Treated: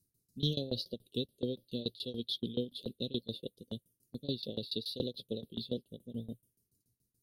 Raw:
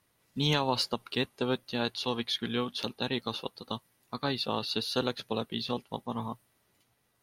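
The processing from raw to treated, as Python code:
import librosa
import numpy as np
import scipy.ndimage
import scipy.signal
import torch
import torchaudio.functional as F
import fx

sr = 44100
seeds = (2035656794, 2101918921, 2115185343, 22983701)

y = scipy.signal.sosfilt(scipy.signal.ellip(3, 1.0, 40, [540.0, 3600.0], 'bandstop', fs=sr, output='sos'), x)
y = fx.env_phaser(y, sr, low_hz=570.0, high_hz=1400.0, full_db=-29.5)
y = fx.tremolo_shape(y, sr, shape='saw_down', hz=7.0, depth_pct=95)
y = F.gain(torch.from_numpy(y), 1.0).numpy()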